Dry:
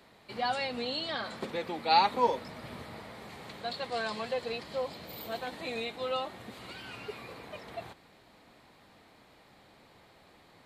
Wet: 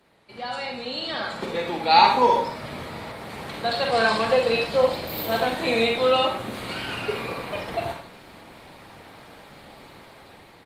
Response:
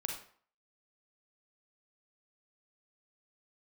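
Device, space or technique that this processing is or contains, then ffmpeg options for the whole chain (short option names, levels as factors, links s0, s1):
speakerphone in a meeting room: -filter_complex "[1:a]atrim=start_sample=2205[s0];[0:a][s0]afir=irnorm=-1:irlink=0,asplit=2[s1][s2];[s2]adelay=150,highpass=300,lowpass=3400,asoftclip=type=hard:threshold=0.106,volume=0.0891[s3];[s1][s3]amix=inputs=2:normalize=0,dynaudnorm=f=450:g=5:m=5.96,volume=0.891" -ar 48000 -c:a libopus -b:a 32k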